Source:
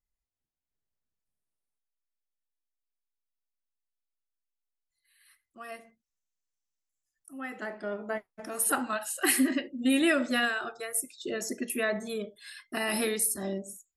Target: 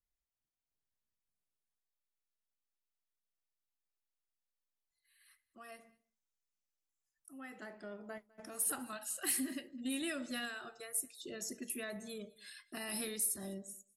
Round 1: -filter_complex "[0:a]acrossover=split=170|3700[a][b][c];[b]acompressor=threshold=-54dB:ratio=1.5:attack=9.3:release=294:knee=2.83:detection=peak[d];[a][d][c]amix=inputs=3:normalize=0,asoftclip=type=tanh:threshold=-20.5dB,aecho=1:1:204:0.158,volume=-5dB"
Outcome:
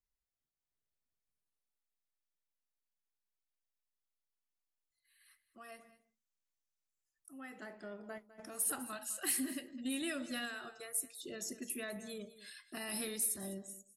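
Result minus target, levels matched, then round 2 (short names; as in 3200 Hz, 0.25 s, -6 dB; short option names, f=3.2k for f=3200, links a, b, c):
echo-to-direct +8 dB
-filter_complex "[0:a]acrossover=split=170|3700[a][b][c];[b]acompressor=threshold=-54dB:ratio=1.5:attack=9.3:release=294:knee=2.83:detection=peak[d];[a][d][c]amix=inputs=3:normalize=0,asoftclip=type=tanh:threshold=-20.5dB,aecho=1:1:204:0.0631,volume=-5dB"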